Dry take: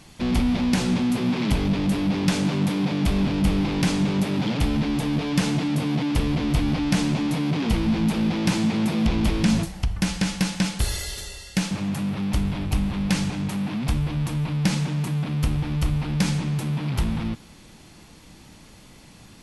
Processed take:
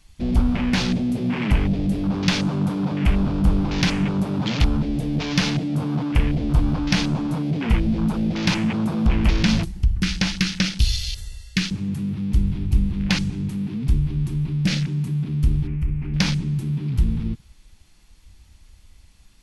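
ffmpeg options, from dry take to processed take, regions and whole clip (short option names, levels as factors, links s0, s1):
-filter_complex "[0:a]asettb=1/sr,asplit=3[s0][s1][s2];[s0]atrim=end=15.674[s3];[s1]atrim=start=15.67:end=16.14,asetpts=PTS-STARTPTS,afade=t=in:d=0.004:c=qsin,afade=t=out:st=0.466:d=0.004:c=qsin,highshelf=f=3000:t=q:w=3:g=-8.5,acompressor=threshold=0.0562:ratio=2.5:attack=3.2:release=140:knee=1:detection=peak[s4];[s2]atrim=start=16.136[s5];[s3][s4]acrossfade=d=0.004:c1=hsin:c2=qsin[s6];[s6][s5]acrossfade=d=0.004:c1=qsin:c2=hsin,equalizer=f=350:w=0.31:g=-9.5,afwtdn=0.0158,volume=2.66"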